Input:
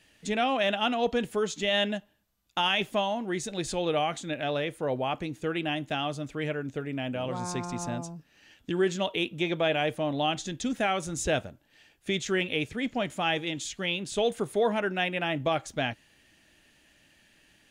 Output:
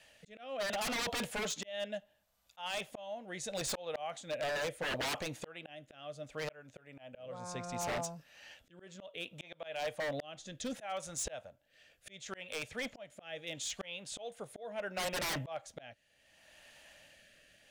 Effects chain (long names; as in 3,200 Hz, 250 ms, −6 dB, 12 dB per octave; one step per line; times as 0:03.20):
low shelf with overshoot 450 Hz −7 dB, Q 3
volume swells 792 ms
rotating-speaker cabinet horn 0.7 Hz
wave folding −34.5 dBFS
level +4 dB